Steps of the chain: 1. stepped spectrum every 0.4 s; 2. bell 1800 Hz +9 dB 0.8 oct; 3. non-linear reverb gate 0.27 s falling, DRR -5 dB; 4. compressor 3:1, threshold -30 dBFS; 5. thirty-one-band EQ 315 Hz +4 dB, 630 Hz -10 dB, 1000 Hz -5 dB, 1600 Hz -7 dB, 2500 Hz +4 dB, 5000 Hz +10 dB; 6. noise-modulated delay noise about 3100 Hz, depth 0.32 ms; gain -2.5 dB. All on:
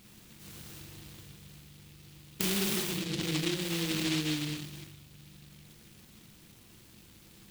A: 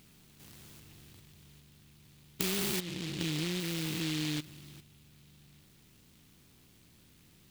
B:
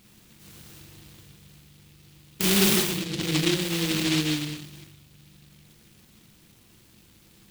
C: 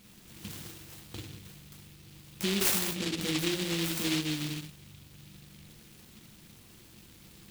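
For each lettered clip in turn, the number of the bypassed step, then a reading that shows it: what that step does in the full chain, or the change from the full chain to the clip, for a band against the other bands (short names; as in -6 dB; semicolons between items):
3, crest factor change +3.0 dB; 4, mean gain reduction 2.0 dB; 1, 125 Hz band -2.0 dB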